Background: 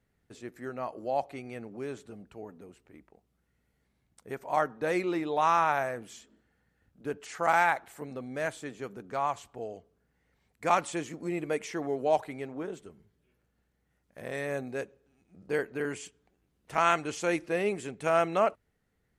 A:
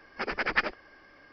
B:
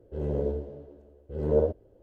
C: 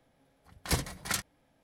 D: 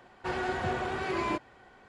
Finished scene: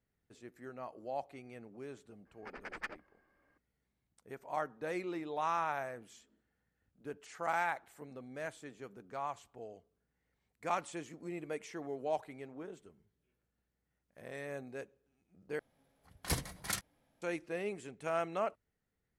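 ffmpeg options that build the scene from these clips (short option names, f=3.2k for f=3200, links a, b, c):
-filter_complex "[0:a]volume=-9.5dB[a];[1:a]adynamicsmooth=sensitivity=2:basefreq=2.2k[b];[3:a]equalizer=f=11k:w=3:g=4[c];[a]asplit=2[d][e];[d]atrim=end=15.594[f];[c]atrim=end=1.63,asetpts=PTS-STARTPTS,volume=-5.5dB[g];[e]atrim=start=17.216[h];[b]atrim=end=1.32,asetpts=PTS-STARTPTS,volume=-15.5dB,afade=t=in:d=0.004:c=hsin,afade=t=out:st=1.316:d=0.004:c=hsin,adelay=2260[i];[f][g]acrossfade=d=0.004:c1=hsin:c2=hsin[j];[j][h]acrossfade=d=0.004:c1=hsin:c2=hsin[k];[k][i]amix=inputs=2:normalize=0"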